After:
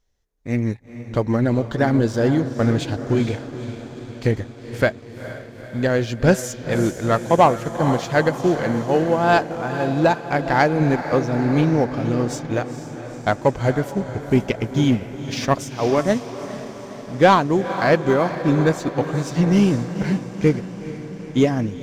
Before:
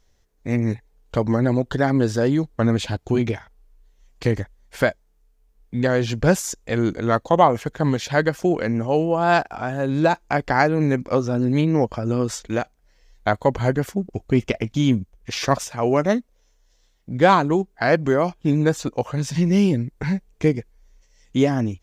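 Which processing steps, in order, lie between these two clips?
echo that smears into a reverb 463 ms, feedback 67%, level -9 dB; waveshaping leveller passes 1; upward expansion 1.5:1, over -23 dBFS

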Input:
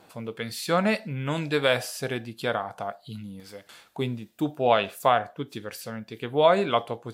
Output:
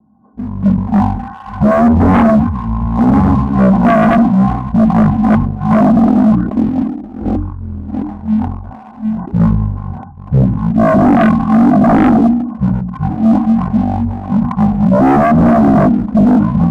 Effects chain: chunks repeated in reverse 286 ms, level -5.5 dB; rotary cabinet horn 6 Hz; cascade formant filter e; in parallel at 0 dB: peak limiter -28.5 dBFS, peak gain reduction 9 dB; on the sum: speed mistake 78 rpm record played at 33 rpm; level rider gain up to 13 dB; waveshaping leveller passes 1; hum notches 60/120/180/240/300 Hz; sine folder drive 10 dB, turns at -3.5 dBFS; decay stretcher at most 63 dB/s; trim -1.5 dB

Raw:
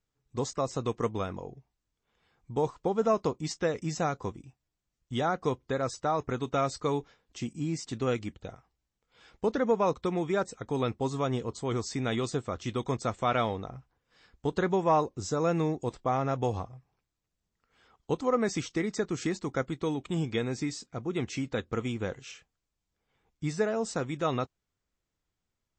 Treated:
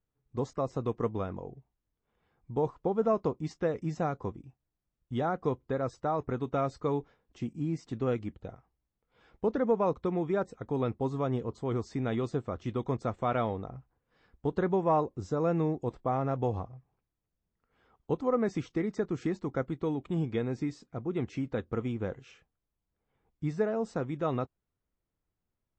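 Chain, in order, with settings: low-pass 1 kHz 6 dB/octave

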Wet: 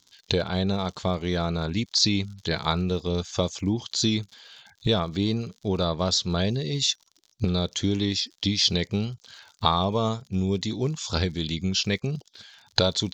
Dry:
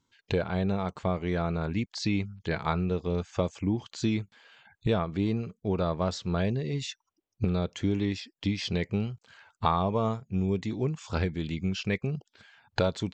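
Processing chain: crackle 72 per s -49 dBFS; high-order bell 4.8 kHz +13 dB 1.3 oct; trim +2.5 dB

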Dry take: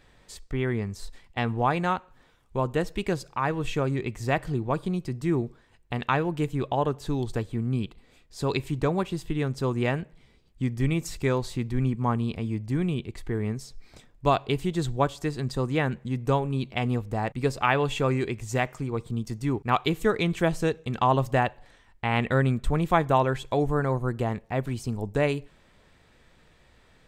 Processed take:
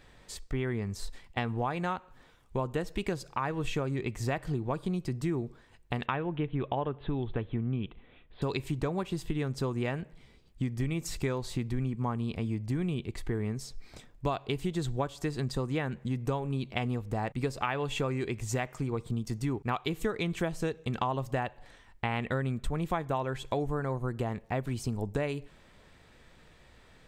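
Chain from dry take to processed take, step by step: 6.06–8.42 s: steep low-pass 3.6 kHz 72 dB/octave; compression 5:1, threshold -29 dBFS, peak gain reduction 12.5 dB; trim +1 dB

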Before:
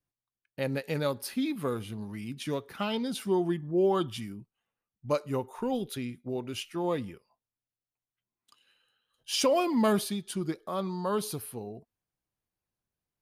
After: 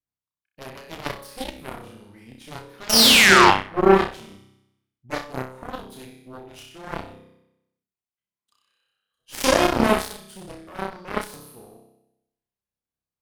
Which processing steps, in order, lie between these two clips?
painted sound fall, 2.89–3.51 s, 760–6000 Hz -22 dBFS; flutter echo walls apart 5.3 m, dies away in 0.88 s; Chebyshev shaper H 5 -43 dB, 6 -22 dB, 7 -15 dB, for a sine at -6.5 dBFS; trim +5 dB

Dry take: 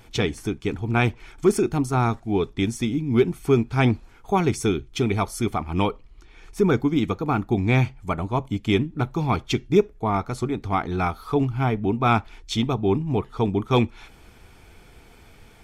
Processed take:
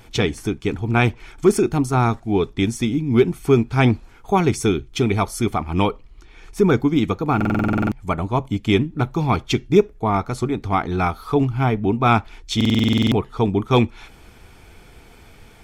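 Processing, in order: buffer glitch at 7.36/12.56 s, samples 2048, times 11; trim +3.5 dB

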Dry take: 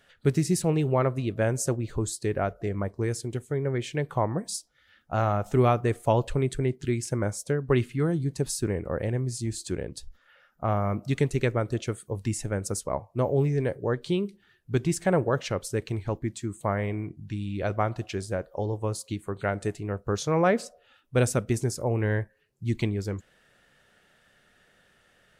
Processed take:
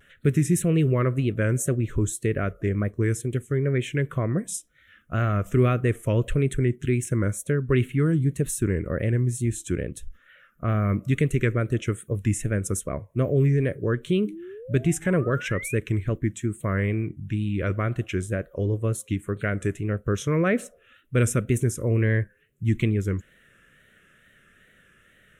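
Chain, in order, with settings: in parallel at +1 dB: peak limiter -20 dBFS, peak gain reduction 10 dB; on the sum: painted sound rise, 14.26–15.76 s, 280–2500 Hz -36 dBFS; static phaser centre 2 kHz, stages 4; wow and flutter 73 cents

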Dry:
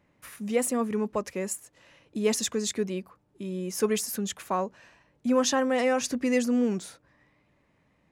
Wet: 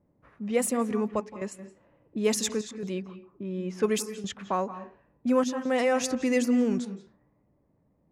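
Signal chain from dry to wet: level-controlled noise filter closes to 620 Hz, open at -23.5 dBFS; trance gate "xxxxxxxxxxx.." 138 bpm -12 dB; on a send: reverberation RT60 0.35 s, pre-delay 166 ms, DRR 13 dB

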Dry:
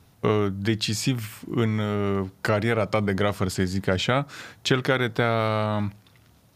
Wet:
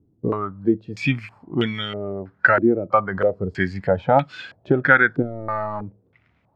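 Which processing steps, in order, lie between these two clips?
5.22–5.82 s: hard clipper -22.5 dBFS, distortion -16 dB; spectral noise reduction 11 dB; step-sequenced low-pass 3.1 Hz 330–3000 Hz; trim +3.5 dB

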